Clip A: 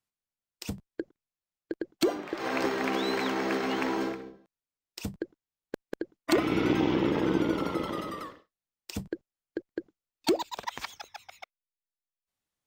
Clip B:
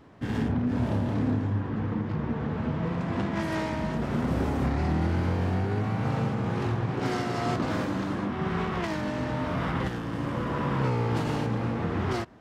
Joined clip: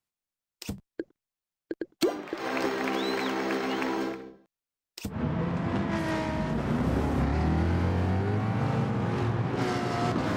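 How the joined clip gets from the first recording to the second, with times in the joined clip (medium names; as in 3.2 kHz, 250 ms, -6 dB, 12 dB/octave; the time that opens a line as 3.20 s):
clip A
5.14 s: go over to clip B from 2.58 s, crossfade 0.14 s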